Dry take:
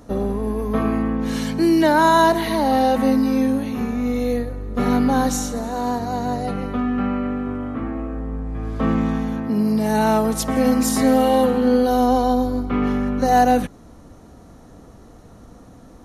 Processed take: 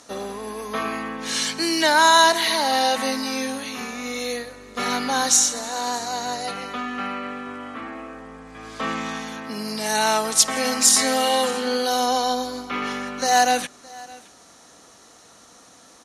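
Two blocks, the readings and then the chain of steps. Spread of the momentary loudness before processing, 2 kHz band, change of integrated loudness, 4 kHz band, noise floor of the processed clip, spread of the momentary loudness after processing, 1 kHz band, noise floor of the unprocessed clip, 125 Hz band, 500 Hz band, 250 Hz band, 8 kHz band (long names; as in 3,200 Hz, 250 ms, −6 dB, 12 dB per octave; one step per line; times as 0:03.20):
10 LU, +4.5 dB, −1.5 dB, +10.5 dB, −50 dBFS, 18 LU, −1.0 dB, −45 dBFS, −16.5 dB, −5.5 dB, −11.5 dB, +11.5 dB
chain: meter weighting curve ITU-R 468
on a send: single-tap delay 616 ms −22 dB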